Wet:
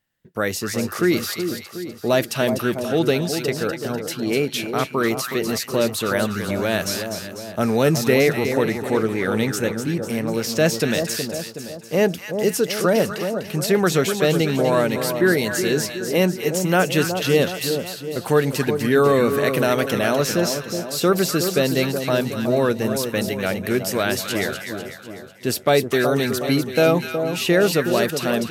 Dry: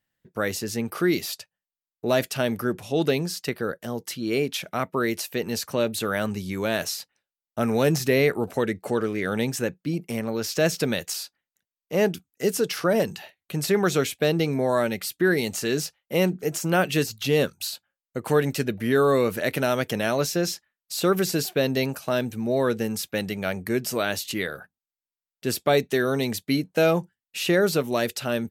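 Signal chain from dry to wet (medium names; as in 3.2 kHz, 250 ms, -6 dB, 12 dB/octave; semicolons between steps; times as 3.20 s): two-band feedback delay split 1.1 kHz, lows 369 ms, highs 248 ms, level -7 dB; 10.74–11.14 s: whistle 1.9 kHz -47 dBFS; trim +3.5 dB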